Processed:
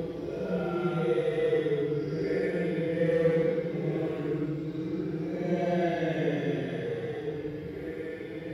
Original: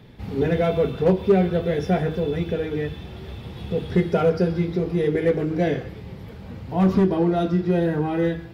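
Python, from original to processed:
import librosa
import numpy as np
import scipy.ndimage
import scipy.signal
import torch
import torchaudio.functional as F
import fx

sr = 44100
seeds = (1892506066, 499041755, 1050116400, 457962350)

y = fx.highpass(x, sr, hz=150.0, slope=6)
y = y + 10.0 ** (-7.0 / 20.0) * np.pad(y, (int(759 * sr / 1000.0), 0))[:len(y)]
y = fx.paulstretch(y, sr, seeds[0], factor=7.3, window_s=0.1, from_s=4.84)
y = F.gain(torch.from_numpy(y), -7.0).numpy()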